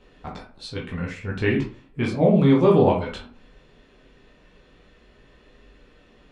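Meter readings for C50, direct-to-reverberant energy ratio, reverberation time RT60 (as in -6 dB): 6.5 dB, -3.0 dB, 0.45 s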